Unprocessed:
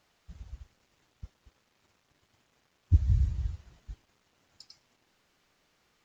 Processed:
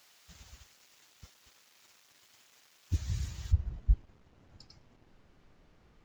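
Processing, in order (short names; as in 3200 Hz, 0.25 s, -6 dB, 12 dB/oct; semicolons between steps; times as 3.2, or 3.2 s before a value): tilt +3.5 dB/oct, from 3.51 s -3.5 dB/oct; gain +3.5 dB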